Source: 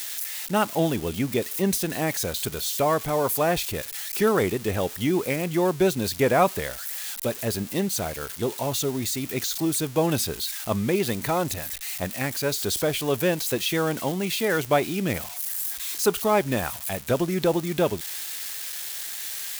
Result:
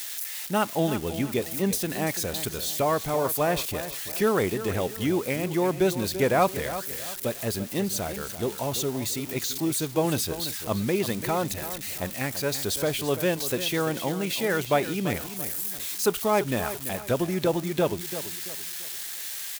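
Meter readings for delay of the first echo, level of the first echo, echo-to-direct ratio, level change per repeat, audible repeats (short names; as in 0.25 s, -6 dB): 0.338 s, -12.0 dB, -11.5 dB, -9.0 dB, 3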